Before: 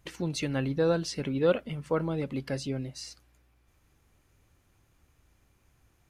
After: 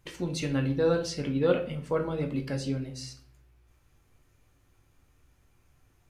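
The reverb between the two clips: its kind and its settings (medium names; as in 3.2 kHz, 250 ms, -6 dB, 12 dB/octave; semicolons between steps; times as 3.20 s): simulated room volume 53 m³, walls mixed, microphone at 0.41 m; trim -1.5 dB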